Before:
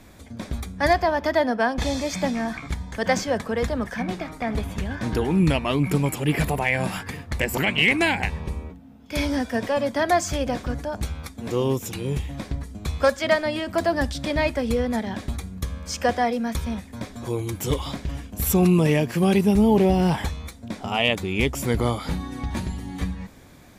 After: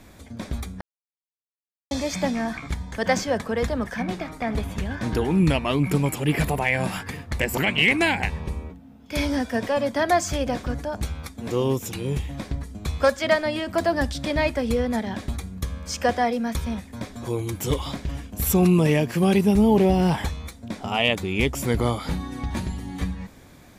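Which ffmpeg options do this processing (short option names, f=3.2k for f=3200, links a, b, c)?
-filter_complex "[0:a]asplit=3[a][b][c];[a]atrim=end=0.81,asetpts=PTS-STARTPTS,afade=t=out:st=0.806:d=0.004:c=hsin[d];[b]atrim=start=0.81:end=1.91,asetpts=PTS-STARTPTS,volume=0[e];[c]atrim=start=1.91,asetpts=PTS-STARTPTS,afade=t=in:d=0.004:c=hsin[f];[d][e][f]concat=n=3:v=0:a=1"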